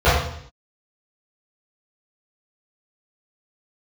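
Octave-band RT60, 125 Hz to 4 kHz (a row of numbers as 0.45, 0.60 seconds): 0.75, 0.70, 0.65, 0.60, 0.65, 0.70 seconds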